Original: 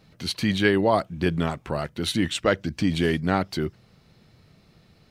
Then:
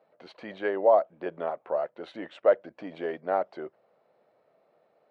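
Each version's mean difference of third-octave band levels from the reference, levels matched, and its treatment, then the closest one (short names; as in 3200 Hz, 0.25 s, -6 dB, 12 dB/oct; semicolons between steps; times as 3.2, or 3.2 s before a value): 11.0 dB: ladder band-pass 670 Hz, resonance 55%; gain +7.5 dB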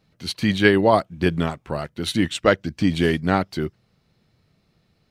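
4.0 dB: upward expander 1.5:1, over -43 dBFS; gain +5.5 dB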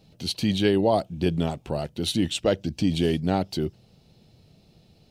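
1.5 dB: band shelf 1500 Hz -10.5 dB 1.3 oct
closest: third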